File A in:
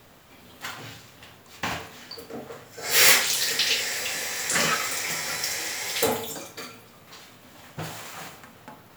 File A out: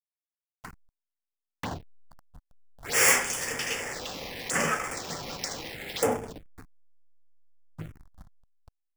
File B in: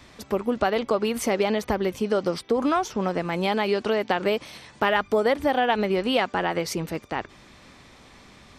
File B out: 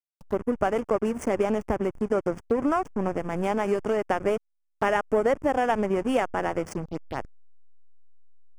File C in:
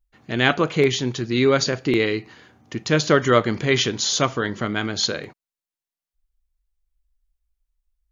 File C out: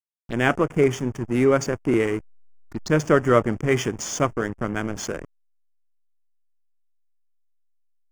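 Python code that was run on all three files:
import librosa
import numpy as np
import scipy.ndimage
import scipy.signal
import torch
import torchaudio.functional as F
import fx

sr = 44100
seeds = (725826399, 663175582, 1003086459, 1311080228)

y = fx.backlash(x, sr, play_db=-23.0)
y = fx.env_phaser(y, sr, low_hz=300.0, high_hz=4000.0, full_db=-26.5)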